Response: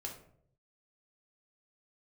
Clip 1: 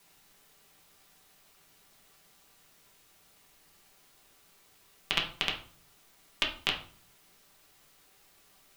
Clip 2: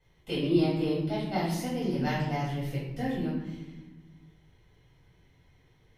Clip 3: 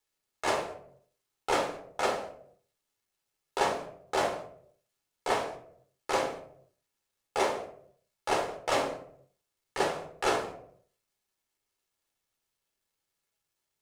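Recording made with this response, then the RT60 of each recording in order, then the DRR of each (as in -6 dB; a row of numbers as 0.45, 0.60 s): 3; 0.45, 1.0, 0.65 s; -1.5, -10.0, 0.5 dB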